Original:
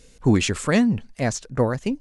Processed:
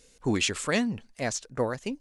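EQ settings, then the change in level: dynamic EQ 3100 Hz, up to +4 dB, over -37 dBFS, Q 1; tone controls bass -7 dB, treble +3 dB; -5.5 dB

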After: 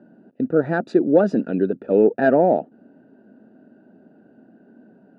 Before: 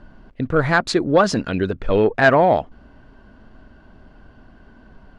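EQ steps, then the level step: running mean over 41 samples; HPF 200 Hz 24 dB/oct; +4.0 dB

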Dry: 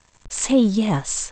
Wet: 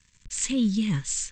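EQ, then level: Butterworth band-stop 710 Hz, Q 1.8; band shelf 630 Hz -11.5 dB 2.5 oct; -3.5 dB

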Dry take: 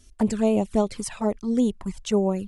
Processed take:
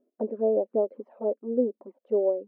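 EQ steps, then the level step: brick-wall FIR high-pass 220 Hz; synth low-pass 540 Hz, resonance Q 5.8; air absorption 220 m; -7.5 dB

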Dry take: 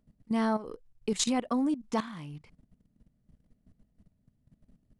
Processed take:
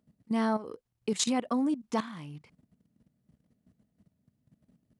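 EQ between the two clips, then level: HPF 110 Hz 12 dB/oct; 0.0 dB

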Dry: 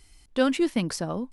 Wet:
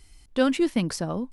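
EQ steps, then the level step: low shelf 200 Hz +3.5 dB; 0.0 dB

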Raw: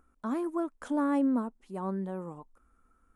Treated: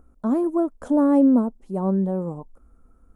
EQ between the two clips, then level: tone controls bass +9 dB, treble +12 dB; tilt shelf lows +7.5 dB, about 1400 Hz; bell 590 Hz +8.5 dB 1.3 oct; -2.0 dB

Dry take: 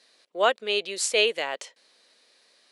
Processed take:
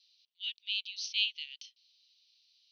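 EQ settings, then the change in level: steep high-pass 2800 Hz 48 dB/oct; Chebyshev low-pass 6200 Hz, order 10; air absorption 93 m; -1.5 dB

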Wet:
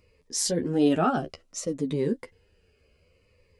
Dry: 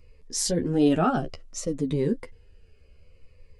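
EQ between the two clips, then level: HPF 170 Hz 6 dB/oct; 0.0 dB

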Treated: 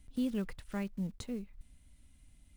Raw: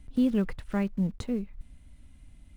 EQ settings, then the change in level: high shelf 3300 Hz +10.5 dB; -9.0 dB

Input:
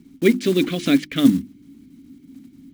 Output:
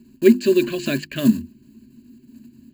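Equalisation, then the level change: ripple EQ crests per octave 1.4, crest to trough 16 dB; -3.0 dB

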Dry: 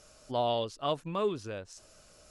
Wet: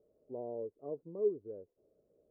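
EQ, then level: HPF 200 Hz 6 dB/oct; ladder low-pass 480 Hz, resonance 65%; 0.0 dB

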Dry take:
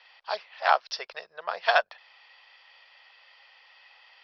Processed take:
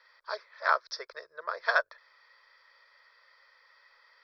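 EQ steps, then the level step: fixed phaser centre 770 Hz, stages 6; 0.0 dB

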